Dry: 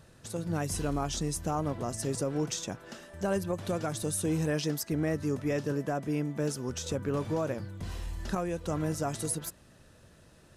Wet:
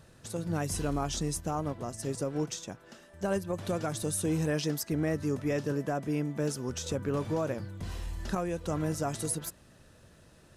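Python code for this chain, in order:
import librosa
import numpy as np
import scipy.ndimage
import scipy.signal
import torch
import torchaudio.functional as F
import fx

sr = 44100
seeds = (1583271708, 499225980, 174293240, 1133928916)

y = fx.upward_expand(x, sr, threshold_db=-39.0, expansion=1.5, at=(1.4, 3.54))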